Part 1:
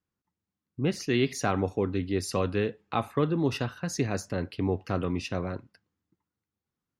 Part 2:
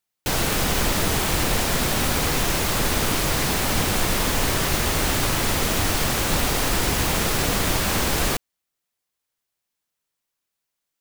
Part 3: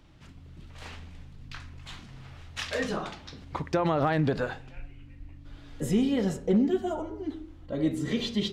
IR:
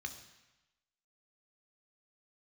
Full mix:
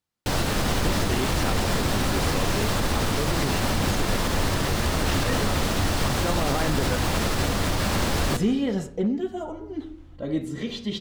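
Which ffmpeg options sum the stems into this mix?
-filter_complex "[0:a]volume=-4dB[a];[1:a]highshelf=f=8.2k:g=-11.5,volume=1dB,asplit=2[b][c];[c]volume=-7dB[d];[2:a]tremolo=f=0.67:d=0.36,adelay=2500,volume=2dB[e];[3:a]atrim=start_sample=2205[f];[d][f]afir=irnorm=-1:irlink=0[g];[a][b][e][g]amix=inputs=4:normalize=0,alimiter=limit=-13.5dB:level=0:latency=1:release=48"

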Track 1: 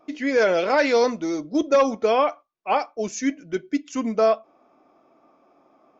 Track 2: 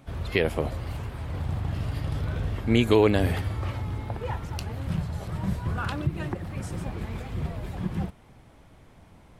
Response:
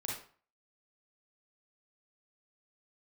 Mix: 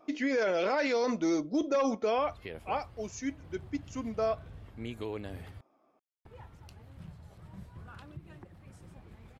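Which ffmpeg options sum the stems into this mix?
-filter_complex "[0:a]volume=-2dB,afade=t=out:st=1.79:d=0.57:silence=0.334965[a];[1:a]adelay=2100,volume=-19dB,asplit=3[b][c][d];[b]atrim=end=5.61,asetpts=PTS-STARTPTS,afade=t=out:st=5.606:d=0.004:c=hsin[e];[c]atrim=start=5.61:end=6.25,asetpts=PTS-STARTPTS,volume=0[f];[d]atrim=start=6.25,asetpts=PTS-STARTPTS,afade=t=in:d=0.004:c=hsin[g];[e][f][g]concat=n=3:v=0:a=1[h];[a][h]amix=inputs=2:normalize=0,alimiter=limit=-21.5dB:level=0:latency=1:release=29"

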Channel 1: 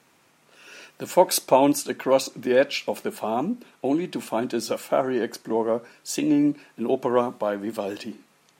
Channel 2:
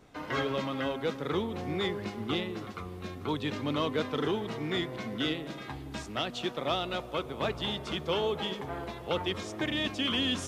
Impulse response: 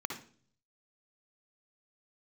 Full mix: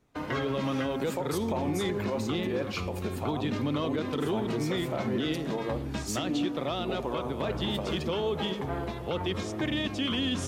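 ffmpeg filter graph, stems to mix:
-filter_complex "[0:a]acompressor=threshold=-34dB:ratio=2,volume=-4.5dB,asplit=2[a][b];[b]volume=-7dB[c];[1:a]lowshelf=f=420:g=6.5,volume=1.5dB[d];[2:a]atrim=start_sample=2205[e];[c][e]afir=irnorm=-1:irlink=0[f];[a][d][f]amix=inputs=3:normalize=0,agate=range=-17dB:threshold=-44dB:ratio=16:detection=peak,alimiter=limit=-21dB:level=0:latency=1:release=84"

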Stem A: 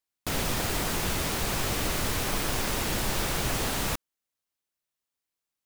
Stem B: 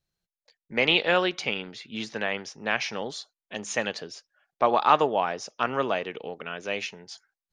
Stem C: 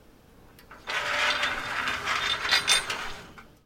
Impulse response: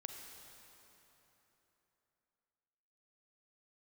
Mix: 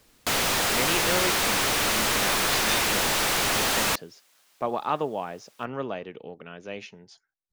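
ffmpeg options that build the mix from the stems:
-filter_complex "[0:a]asplit=2[a][b];[b]highpass=f=720:p=1,volume=38dB,asoftclip=type=tanh:threshold=-14dB[c];[a][c]amix=inputs=2:normalize=0,lowpass=f=6.6k:p=1,volume=-6dB,volume=-3dB[d];[1:a]lowshelf=f=460:g=11,volume=-10dB[e];[2:a]volume=-9.5dB[f];[d][e][f]amix=inputs=3:normalize=0"

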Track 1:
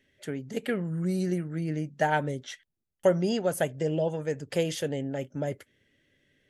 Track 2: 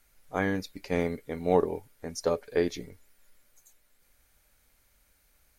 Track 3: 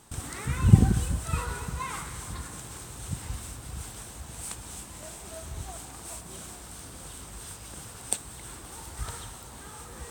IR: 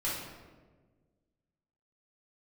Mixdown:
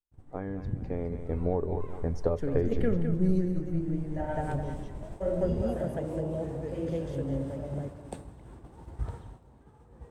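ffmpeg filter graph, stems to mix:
-filter_complex "[0:a]adelay=2150,volume=-16dB,asplit=3[a][b][c];[b]volume=-13dB[d];[c]volume=-7.5dB[e];[1:a]asubboost=boost=11:cutoff=84,volume=-8dB,asplit=3[f][g][h];[g]volume=-19.5dB[i];[2:a]equalizer=f=1.3k:t=o:w=0.34:g=-5.5,volume=-13dB,afade=t=in:st=3.92:d=0.52:silence=0.298538,asplit=2[j][k];[k]volume=-20dB[l];[h]apad=whole_len=381261[m];[a][m]sidechaingate=range=-33dB:threshold=-51dB:ratio=16:detection=peak[n];[f][j]amix=inputs=2:normalize=0,lowpass=f=2.1k:p=1,acompressor=threshold=-39dB:ratio=6,volume=0dB[o];[3:a]atrim=start_sample=2205[p];[d][l]amix=inputs=2:normalize=0[q];[q][p]afir=irnorm=-1:irlink=0[r];[e][i]amix=inputs=2:normalize=0,aecho=0:1:208|416|624|832|1040:1|0.36|0.13|0.0467|0.0168[s];[n][o][r][s]amix=inputs=4:normalize=0,agate=range=-33dB:threshold=-52dB:ratio=3:detection=peak,tiltshelf=f=1.4k:g=9.5,dynaudnorm=f=240:g=11:m=8dB"

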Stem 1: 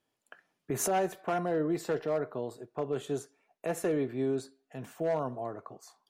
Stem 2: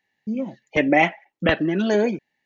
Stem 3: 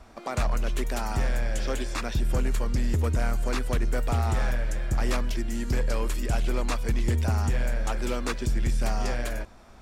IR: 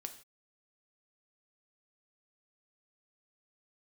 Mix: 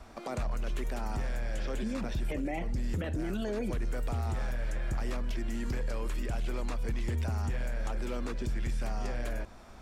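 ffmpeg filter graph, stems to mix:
-filter_complex "[0:a]acompressor=threshold=-37dB:ratio=6,volume=-15dB[a];[1:a]adelay=1550,volume=-0.5dB[b];[2:a]volume=0dB[c];[a][b][c]amix=inputs=3:normalize=0,acrossover=split=660|3400[d][e][f];[d]acompressor=threshold=-27dB:ratio=4[g];[e]acompressor=threshold=-41dB:ratio=4[h];[f]acompressor=threshold=-51dB:ratio=4[i];[g][h][i]amix=inputs=3:normalize=0,alimiter=level_in=2dB:limit=-24dB:level=0:latency=1:release=33,volume=-2dB"

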